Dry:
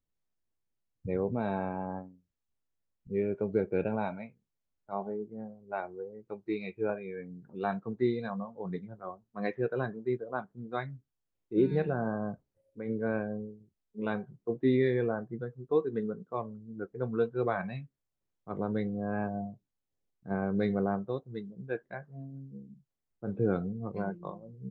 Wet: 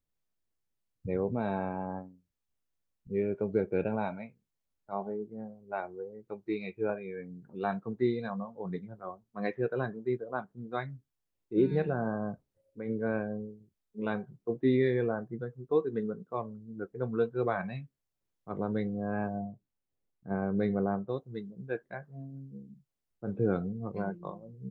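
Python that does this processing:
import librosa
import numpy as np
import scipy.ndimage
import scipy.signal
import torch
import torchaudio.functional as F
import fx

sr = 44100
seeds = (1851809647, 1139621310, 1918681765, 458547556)

y = fx.high_shelf(x, sr, hz=3200.0, db=-10.0, at=(19.38, 21.09))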